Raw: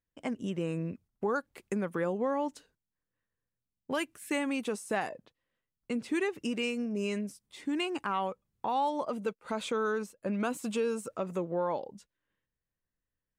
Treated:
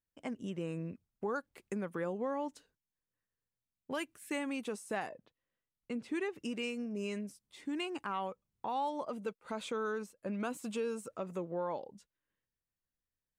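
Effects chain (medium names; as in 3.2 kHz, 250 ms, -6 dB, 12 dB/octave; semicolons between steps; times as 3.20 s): 5.06–6.36 s: treble shelf 5 kHz -6 dB; trim -5.5 dB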